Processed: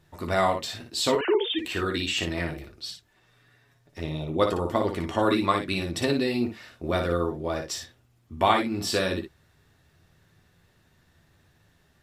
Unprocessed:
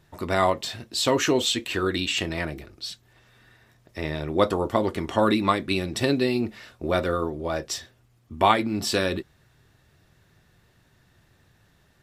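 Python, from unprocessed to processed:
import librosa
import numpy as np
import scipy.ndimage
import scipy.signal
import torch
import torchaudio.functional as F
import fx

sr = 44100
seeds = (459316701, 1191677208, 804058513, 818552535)

p1 = fx.sine_speech(x, sr, at=(1.15, 1.59))
p2 = fx.env_flanger(p1, sr, rest_ms=8.5, full_db=-27.5, at=(2.9, 4.39), fade=0.02)
p3 = p2 + fx.room_early_taps(p2, sr, ms=(12, 58), db=(-8.0, -6.0), dry=0)
y = F.gain(torch.from_numpy(p3), -3.0).numpy()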